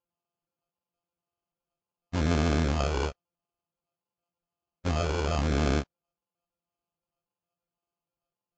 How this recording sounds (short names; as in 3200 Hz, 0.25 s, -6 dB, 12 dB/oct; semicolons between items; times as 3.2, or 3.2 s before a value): a buzz of ramps at a fixed pitch in blocks of 64 samples; phasing stages 12, 0.92 Hz, lowest notch 210–1700 Hz; aliases and images of a low sample rate 1900 Hz, jitter 0%; Vorbis